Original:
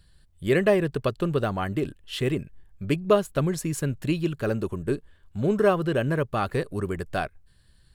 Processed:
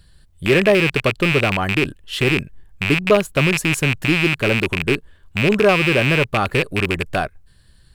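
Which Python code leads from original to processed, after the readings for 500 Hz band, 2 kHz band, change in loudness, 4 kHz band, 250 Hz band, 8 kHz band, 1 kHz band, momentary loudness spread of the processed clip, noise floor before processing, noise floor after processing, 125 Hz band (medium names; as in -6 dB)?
+6.0 dB, +15.5 dB, +8.5 dB, +15.0 dB, +6.5 dB, +8.5 dB, +7.0 dB, 9 LU, -59 dBFS, -52 dBFS, +6.5 dB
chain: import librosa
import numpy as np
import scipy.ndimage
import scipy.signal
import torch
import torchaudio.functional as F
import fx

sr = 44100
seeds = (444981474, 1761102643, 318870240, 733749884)

p1 = fx.rattle_buzz(x, sr, strikes_db=-32.0, level_db=-13.0)
p2 = 10.0 ** (-18.5 / 20.0) * np.tanh(p1 / 10.0 ** (-18.5 / 20.0))
p3 = p1 + F.gain(torch.from_numpy(p2), -3.0).numpy()
y = F.gain(torch.from_numpy(p3), 2.5).numpy()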